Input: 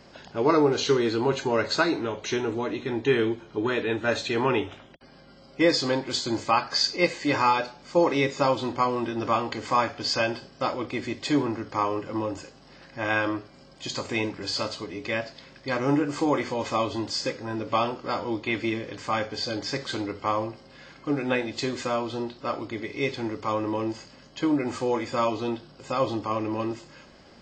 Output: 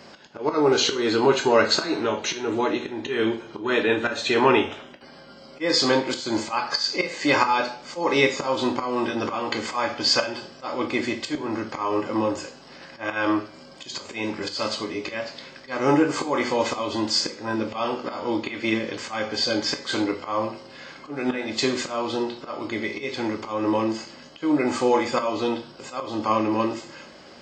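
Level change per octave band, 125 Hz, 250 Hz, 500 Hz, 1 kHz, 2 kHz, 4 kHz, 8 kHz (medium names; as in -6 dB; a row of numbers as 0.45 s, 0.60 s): -2.5 dB, +2.5 dB, +2.5 dB, +1.5 dB, +3.0 dB, +4.5 dB, +5.5 dB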